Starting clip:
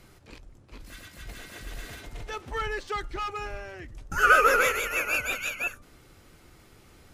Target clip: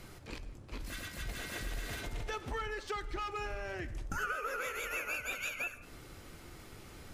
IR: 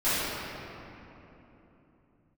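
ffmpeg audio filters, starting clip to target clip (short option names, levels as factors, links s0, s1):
-filter_complex "[0:a]acompressor=threshold=0.0126:ratio=10,asplit=2[s0][s1];[1:a]atrim=start_sample=2205,afade=t=out:st=0.25:d=0.01,atrim=end_sample=11466,adelay=9[s2];[s1][s2]afir=irnorm=-1:irlink=0,volume=0.0447[s3];[s0][s3]amix=inputs=2:normalize=0,volume=1.41"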